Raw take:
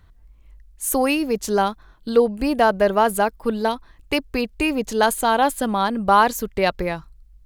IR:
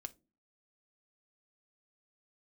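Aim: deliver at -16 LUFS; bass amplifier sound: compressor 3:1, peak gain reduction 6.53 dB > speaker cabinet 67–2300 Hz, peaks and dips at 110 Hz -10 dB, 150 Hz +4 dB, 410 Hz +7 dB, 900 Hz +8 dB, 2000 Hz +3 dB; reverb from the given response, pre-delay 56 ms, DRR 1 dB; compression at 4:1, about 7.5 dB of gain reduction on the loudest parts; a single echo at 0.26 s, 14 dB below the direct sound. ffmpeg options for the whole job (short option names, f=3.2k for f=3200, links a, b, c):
-filter_complex "[0:a]acompressor=threshold=-18dB:ratio=4,aecho=1:1:260:0.2,asplit=2[a][b];[1:a]atrim=start_sample=2205,adelay=56[c];[b][c]afir=irnorm=-1:irlink=0,volume=3dB[d];[a][d]amix=inputs=2:normalize=0,acompressor=threshold=-22dB:ratio=3,highpass=f=67:w=0.5412,highpass=f=67:w=1.3066,equalizer=f=110:t=q:w=4:g=-10,equalizer=f=150:t=q:w=4:g=4,equalizer=f=410:t=q:w=4:g=7,equalizer=f=900:t=q:w=4:g=8,equalizer=f=2k:t=q:w=4:g=3,lowpass=f=2.3k:w=0.5412,lowpass=f=2.3k:w=1.3066,volume=7dB"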